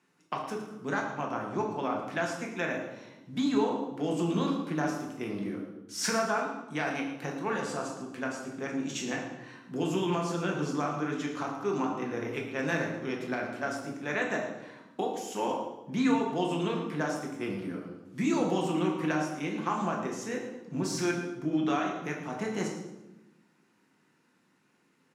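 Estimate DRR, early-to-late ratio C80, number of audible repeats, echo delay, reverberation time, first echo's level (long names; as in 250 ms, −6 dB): −0.5 dB, 6.5 dB, 1, 112 ms, 1.0 s, −11.5 dB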